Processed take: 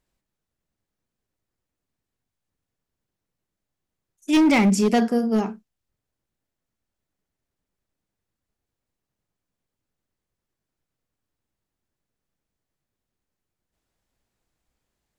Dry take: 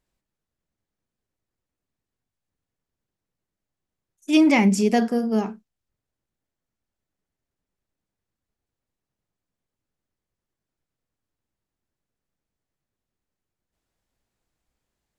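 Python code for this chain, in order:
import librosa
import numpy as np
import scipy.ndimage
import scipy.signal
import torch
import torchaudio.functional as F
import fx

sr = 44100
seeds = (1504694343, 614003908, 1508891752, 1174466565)

y = np.clip(x, -10.0 ** (-15.0 / 20.0), 10.0 ** (-15.0 / 20.0))
y = y * librosa.db_to_amplitude(1.5)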